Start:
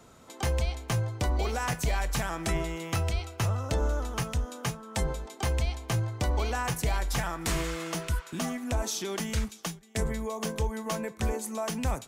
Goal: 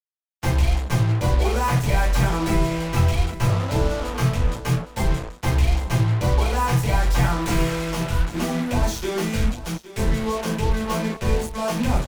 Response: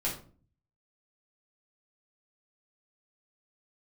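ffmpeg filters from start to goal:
-filter_complex "[0:a]asplit=2[s0][s1];[s1]alimiter=level_in=1.33:limit=0.0631:level=0:latency=1,volume=0.75,volume=0.794[s2];[s0][s2]amix=inputs=2:normalize=0,highshelf=f=4300:g=-8.5,bandreject=f=56.78:t=h:w=4,bandreject=f=113.56:t=h:w=4,bandreject=f=170.34:t=h:w=4,bandreject=f=227.12:t=h:w=4,bandreject=f=283.9:t=h:w=4,bandreject=f=340.68:t=h:w=4,bandreject=f=397.46:t=h:w=4,bandreject=f=454.24:t=h:w=4,bandreject=f=511.02:t=h:w=4,bandreject=f=567.8:t=h:w=4,bandreject=f=624.58:t=h:w=4,bandreject=f=681.36:t=h:w=4,bandreject=f=738.14:t=h:w=4,bandreject=f=794.92:t=h:w=4,bandreject=f=851.7:t=h:w=4,bandreject=f=908.48:t=h:w=4,bandreject=f=965.26:t=h:w=4,bandreject=f=1022.04:t=h:w=4,bandreject=f=1078.82:t=h:w=4,bandreject=f=1135.6:t=h:w=4,bandreject=f=1192.38:t=h:w=4,bandreject=f=1249.16:t=h:w=4,bandreject=f=1305.94:t=h:w=4,bandreject=f=1362.72:t=h:w=4,bandreject=f=1419.5:t=h:w=4,bandreject=f=1476.28:t=h:w=4,bandreject=f=1533.06:t=h:w=4,bandreject=f=1589.84:t=h:w=4,bandreject=f=1646.62:t=h:w=4,bandreject=f=1703.4:t=h:w=4,bandreject=f=1760.18:t=h:w=4,bandreject=f=1816.96:t=h:w=4,bandreject=f=1873.74:t=h:w=4,bandreject=f=1930.52:t=h:w=4,bandreject=f=1987.3:t=h:w=4,agate=range=0.0224:threshold=0.0355:ratio=3:detection=peak[s3];[1:a]atrim=start_sample=2205,atrim=end_sample=4410[s4];[s3][s4]afir=irnorm=-1:irlink=0,acrusher=bits=4:mix=0:aa=0.5,aecho=1:1:814:0.178"

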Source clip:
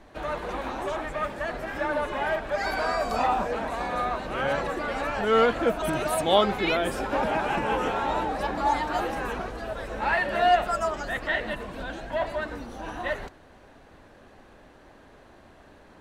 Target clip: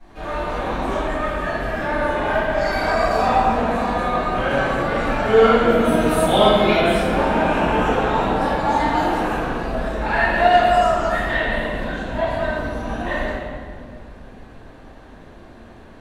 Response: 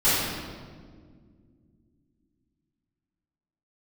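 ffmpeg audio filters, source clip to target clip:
-filter_complex "[1:a]atrim=start_sample=2205,asetrate=35280,aresample=44100[s0];[0:a][s0]afir=irnorm=-1:irlink=0,volume=0.251"

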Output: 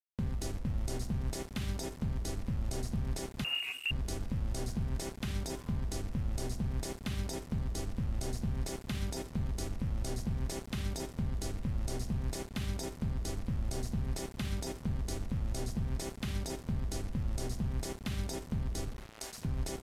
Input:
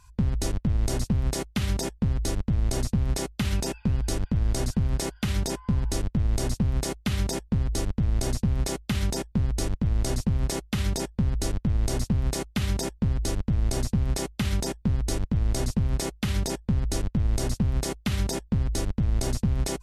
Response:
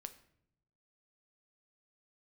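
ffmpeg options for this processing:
-filter_complex "[0:a]asettb=1/sr,asplit=3[s0][s1][s2];[s0]atrim=end=18.884[s3];[s1]atrim=start=18.88:end=19.45,asetpts=PTS-STARTPTS,afade=t=in:d=0.004:c=qsin,afade=t=out:st=0.566:d=0.004:c=qsin,highpass=780[s4];[s2]atrim=start=19.446[s5];[s3][s4]acrossfade=d=0.004:c1=hsin:c2=qsin[s6];[s6][s5]acrossfade=d=0.004:c1=qsin:c2=hsin,asplit=2[s7][s8];[s8]acompressor=threshold=0.0126:ratio=4,volume=1.26[s9];[s7][s9]amix=inputs=2:normalize=0,asplit=2[s10][s11];[s11]adelay=858,lowpass=f=1100:p=1,volume=0.141,asplit=2[s12][s13];[s13]adelay=858,lowpass=f=1100:p=1,volume=0.27,asplit=2[s14][s15];[s15]adelay=858,lowpass=f=1100:p=1,volume=0.27[s16];[s10][s12][s14][s16]amix=inputs=4:normalize=0[s17];[1:a]atrim=start_sample=2205,asetrate=40572,aresample=44100[s18];[s17][s18]afir=irnorm=-1:irlink=0,asettb=1/sr,asplit=3[s19][s20][s21];[s19]atrim=end=3.444[s22];[s20]atrim=start=3.44:end=3.91,asetpts=PTS-STARTPTS,afade=t=in:d=0.004:c=qsin,afade=t=out:st=0.466:d=0.004:c=qsin,lowpass=f=2500:t=q:w=0.5098,lowpass=f=2500:t=q:w=0.6013,lowpass=f=2500:t=q:w=0.9,lowpass=f=2500:t=q:w=2.563,afreqshift=-2900[s23];[s21]atrim=start=3.906[s24];[s22][s23]acrossfade=d=0.004:c1=hsin:c2=qsin[s25];[s25][s24]acrossfade=d=0.004:c1=qsin:c2=hsin,aeval=exprs='val(0)*gte(abs(val(0)),0.0133)':c=same,volume=0.422" -ar 32000 -c:a libvorbis -b:a 128k

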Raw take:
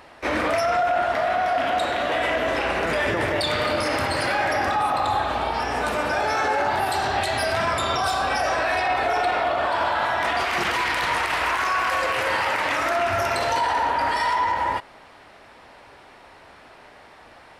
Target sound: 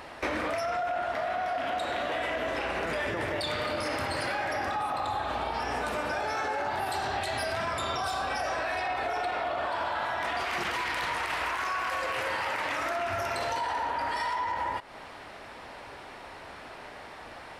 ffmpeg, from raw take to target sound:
-af "acompressor=threshold=0.0251:ratio=6,volume=1.41"

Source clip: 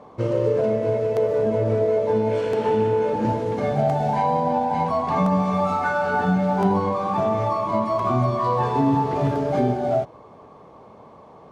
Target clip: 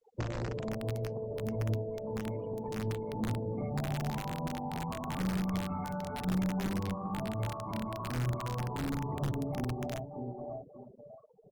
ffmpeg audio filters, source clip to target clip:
-filter_complex "[0:a]adynamicsmooth=sensitivity=1:basefreq=4800,equalizer=f=1500:t=o:w=0.41:g=-9.5,asplit=2[s0][s1];[s1]aecho=0:1:584|1168|1752:0.237|0.0545|0.0125[s2];[s0][s2]amix=inputs=2:normalize=0,alimiter=limit=0.2:level=0:latency=1:release=78,adynamicequalizer=threshold=0.0158:dfrequency=510:dqfactor=2.1:tfrequency=510:tqfactor=2.1:attack=5:release=100:ratio=0.375:range=2:mode=cutabove:tftype=bell,afftfilt=real='re*gte(hypot(re,im),0.0282)':imag='im*gte(hypot(re,im),0.0282)':win_size=1024:overlap=0.75,aeval=exprs='(mod(6.31*val(0)+1,2)-1)/6.31':c=same,acrossover=split=230[s3][s4];[s4]acompressor=threshold=0.0224:ratio=10[s5];[s3][s5]amix=inputs=2:normalize=0,volume=0.562" -ar 48000 -c:a libopus -b:a 16k

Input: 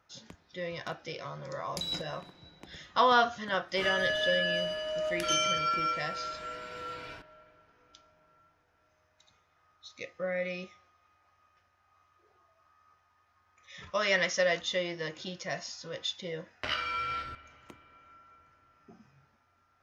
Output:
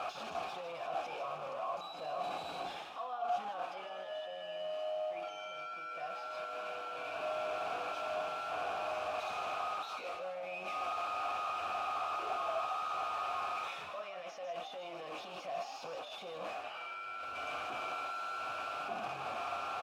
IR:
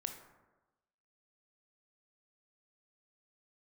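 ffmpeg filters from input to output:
-filter_complex "[0:a]aeval=exprs='val(0)+0.5*0.0299*sgn(val(0))':c=same,areverse,acompressor=threshold=0.0158:ratio=5,areverse,alimiter=level_in=3.98:limit=0.0631:level=0:latency=1:release=18,volume=0.251,asplit=3[s0][s1][s2];[s0]bandpass=f=730:t=q:w=8,volume=1[s3];[s1]bandpass=f=1090:t=q:w=8,volume=0.501[s4];[s2]bandpass=f=2440:t=q:w=8,volume=0.355[s5];[s3][s4][s5]amix=inputs=3:normalize=0,bandreject=f=118.2:t=h:w=4,bandreject=f=236.4:t=h:w=4,bandreject=f=354.6:t=h:w=4,bandreject=f=472.8:t=h:w=4,bandreject=f=591:t=h:w=4,bandreject=f=709.2:t=h:w=4,bandreject=f=827.4:t=h:w=4,bandreject=f=945.6:t=h:w=4,bandreject=f=1063.8:t=h:w=4,bandreject=f=1182:t=h:w=4,bandreject=f=1300.2:t=h:w=4,bandreject=f=1418.4:t=h:w=4,bandreject=f=1536.6:t=h:w=4,bandreject=f=1654.8:t=h:w=4,bandreject=f=1773:t=h:w=4,bandreject=f=1891.2:t=h:w=4,bandreject=f=2009.4:t=h:w=4,bandreject=f=2127.6:t=h:w=4,bandreject=f=2245.8:t=h:w=4,bandreject=f=2364:t=h:w=4,bandreject=f=2482.2:t=h:w=4,bandreject=f=2600.4:t=h:w=4,bandreject=f=2718.6:t=h:w=4,bandreject=f=2836.8:t=h:w=4,bandreject=f=2955:t=h:w=4,bandreject=f=3073.2:t=h:w=4,bandreject=f=3191.4:t=h:w=4,bandreject=f=3309.6:t=h:w=4,bandreject=f=3427.8:t=h:w=4,bandreject=f=3546:t=h:w=4,bandreject=f=3664.2:t=h:w=4,bandreject=f=3782.4:t=h:w=4,bandreject=f=3900.6:t=h:w=4,bandreject=f=4018.8:t=h:w=4,bandreject=f=4137:t=h:w=4,bandreject=f=4255.2:t=h:w=4,bandreject=f=4373.4:t=h:w=4,asplit=2[s6][s7];[s7]asplit=3[s8][s9][s10];[s8]adelay=154,afreqshift=99,volume=0.355[s11];[s9]adelay=308,afreqshift=198,volume=0.106[s12];[s10]adelay=462,afreqshift=297,volume=0.032[s13];[s11][s12][s13]amix=inputs=3:normalize=0[s14];[s6][s14]amix=inputs=2:normalize=0,volume=3.35" -ar 48000 -c:a aac -b:a 64k

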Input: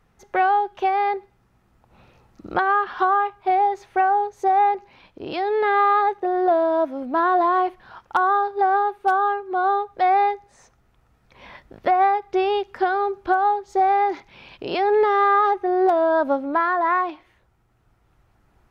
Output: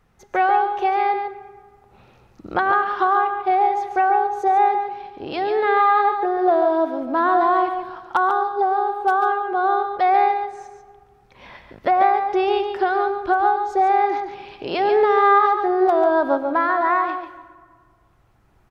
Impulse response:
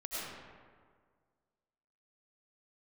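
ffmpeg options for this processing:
-filter_complex "[0:a]asettb=1/sr,asplit=3[s0][s1][s2];[s0]atrim=end=8.294[s3];[s1]atrim=start=8.29:end=8.92,asetpts=PTS-STARTPTS,afade=t=in:d=0.004:c=qsin,afade=t=out:st=0.626:d=0.004:c=qsin,equalizer=f=1900:w=1.2:g=-10.5[s4];[s2]atrim=start=8.916[s5];[s3][s4]acrossfade=d=0.004:c1=hsin:c2=qsin[s6];[s6][s5]acrossfade=d=0.004:c1=qsin:c2=hsin,aecho=1:1:142:0.422,asplit=2[s7][s8];[1:a]atrim=start_sample=2205[s9];[s8][s9]afir=irnorm=-1:irlink=0,volume=0.158[s10];[s7][s10]amix=inputs=2:normalize=0"

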